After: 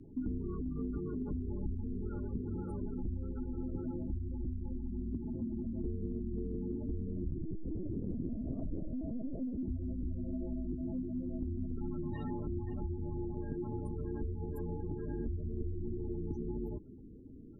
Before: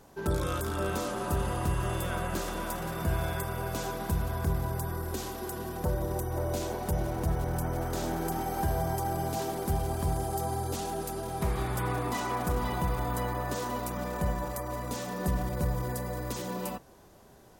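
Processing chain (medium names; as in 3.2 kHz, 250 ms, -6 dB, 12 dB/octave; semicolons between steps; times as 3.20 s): resonant low shelf 580 Hz +8 dB, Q 3; spectral gate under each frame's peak -20 dB strong; compression, threshold -30 dBFS, peak gain reduction 14 dB; frequency shift -140 Hz; 7.31–9.63 s: LPC vocoder at 8 kHz pitch kept; trim -4.5 dB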